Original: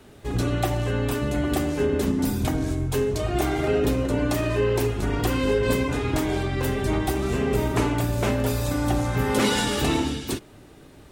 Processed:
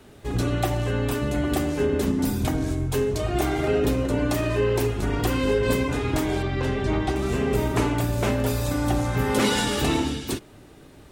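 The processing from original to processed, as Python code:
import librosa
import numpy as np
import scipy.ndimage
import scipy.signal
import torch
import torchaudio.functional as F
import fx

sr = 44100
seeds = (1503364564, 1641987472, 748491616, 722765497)

y = fx.lowpass(x, sr, hz=5200.0, slope=12, at=(6.42, 7.16))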